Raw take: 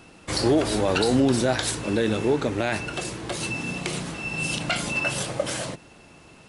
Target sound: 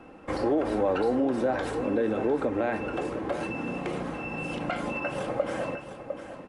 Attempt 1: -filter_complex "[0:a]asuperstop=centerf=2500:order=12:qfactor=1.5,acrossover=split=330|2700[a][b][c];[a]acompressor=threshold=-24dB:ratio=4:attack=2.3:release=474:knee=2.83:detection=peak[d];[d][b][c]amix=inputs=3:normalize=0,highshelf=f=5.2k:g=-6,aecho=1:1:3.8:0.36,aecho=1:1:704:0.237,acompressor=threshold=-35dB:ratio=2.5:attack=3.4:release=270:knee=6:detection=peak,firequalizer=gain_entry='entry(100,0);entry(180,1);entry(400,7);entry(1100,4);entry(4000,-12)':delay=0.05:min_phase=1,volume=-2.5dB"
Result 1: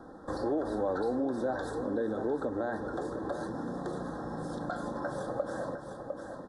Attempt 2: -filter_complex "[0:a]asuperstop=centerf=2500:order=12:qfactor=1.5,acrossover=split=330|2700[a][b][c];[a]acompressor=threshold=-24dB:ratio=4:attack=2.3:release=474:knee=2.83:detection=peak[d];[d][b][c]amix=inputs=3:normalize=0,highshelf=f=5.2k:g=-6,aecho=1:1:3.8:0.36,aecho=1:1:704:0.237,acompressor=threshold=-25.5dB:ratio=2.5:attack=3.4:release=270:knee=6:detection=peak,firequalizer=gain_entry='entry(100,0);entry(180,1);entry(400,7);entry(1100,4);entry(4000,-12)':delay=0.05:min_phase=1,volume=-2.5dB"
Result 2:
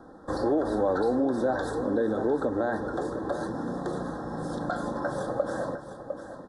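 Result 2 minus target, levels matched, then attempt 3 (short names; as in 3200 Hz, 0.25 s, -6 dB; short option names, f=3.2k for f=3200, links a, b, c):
2000 Hz band -3.0 dB
-filter_complex "[0:a]acrossover=split=330|2700[a][b][c];[a]acompressor=threshold=-24dB:ratio=4:attack=2.3:release=474:knee=2.83:detection=peak[d];[d][b][c]amix=inputs=3:normalize=0,highshelf=f=5.2k:g=-6,aecho=1:1:3.8:0.36,aecho=1:1:704:0.237,acompressor=threshold=-25.5dB:ratio=2.5:attack=3.4:release=270:knee=6:detection=peak,firequalizer=gain_entry='entry(100,0);entry(180,1);entry(400,7);entry(1100,4);entry(4000,-12)':delay=0.05:min_phase=1,volume=-2.5dB"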